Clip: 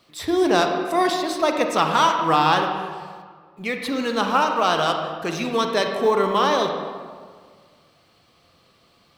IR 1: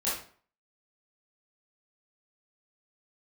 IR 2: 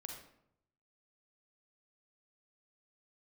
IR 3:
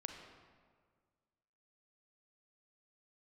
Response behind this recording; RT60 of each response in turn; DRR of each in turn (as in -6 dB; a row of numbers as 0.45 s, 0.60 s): 3; 0.45 s, 0.75 s, 1.8 s; -10.0 dB, 1.5 dB, 3.5 dB